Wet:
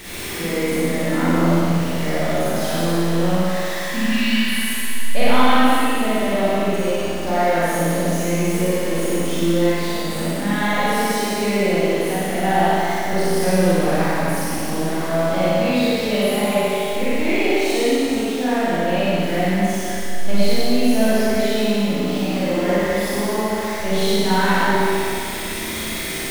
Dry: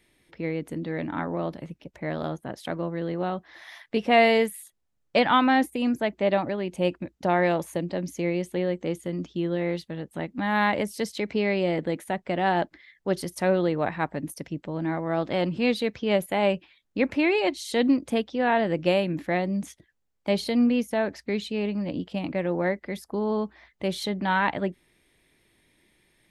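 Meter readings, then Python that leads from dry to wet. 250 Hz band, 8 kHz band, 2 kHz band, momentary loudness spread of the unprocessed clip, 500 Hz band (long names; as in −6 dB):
+7.0 dB, +16.5 dB, +7.0 dB, 11 LU, +6.5 dB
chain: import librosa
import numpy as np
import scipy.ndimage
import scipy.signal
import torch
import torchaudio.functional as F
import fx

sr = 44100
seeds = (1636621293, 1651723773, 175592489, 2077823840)

y = x + 0.5 * 10.0 ** (-30.0 / 20.0) * np.sign(x)
y = fx.spec_repair(y, sr, seeds[0], start_s=3.9, length_s=0.78, low_hz=290.0, high_hz=2200.0, source='before')
y = fx.doubler(y, sr, ms=44.0, db=-11)
y = fx.room_flutter(y, sr, wall_m=10.2, rt60_s=0.77)
y = fx.rider(y, sr, range_db=4, speed_s=2.0)
y = fx.rev_schroeder(y, sr, rt60_s=2.8, comb_ms=32, drr_db=-9.5)
y = y * librosa.db_to_amplitude(-6.5)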